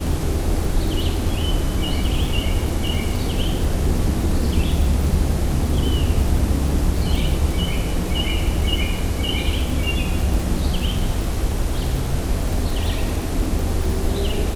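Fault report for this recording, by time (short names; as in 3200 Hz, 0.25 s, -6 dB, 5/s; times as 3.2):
crackle 72/s -25 dBFS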